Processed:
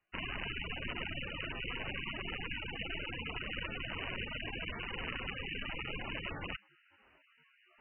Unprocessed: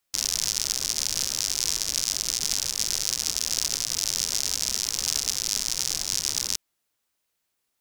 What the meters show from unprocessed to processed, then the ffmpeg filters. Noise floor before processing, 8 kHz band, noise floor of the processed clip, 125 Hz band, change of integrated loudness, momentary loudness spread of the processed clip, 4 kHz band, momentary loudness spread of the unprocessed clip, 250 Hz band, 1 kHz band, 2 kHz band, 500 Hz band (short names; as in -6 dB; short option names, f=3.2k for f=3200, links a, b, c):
-78 dBFS, under -40 dB, -69 dBFS, +1.5 dB, -15.0 dB, 1 LU, -16.0 dB, 1 LU, +2.0 dB, -0.5 dB, +1.5 dB, +1.0 dB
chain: -af "areverse,acompressor=mode=upward:threshold=-42dB:ratio=2.5,areverse,volume=1.5dB" -ar 16000 -c:a libmp3lame -b:a 8k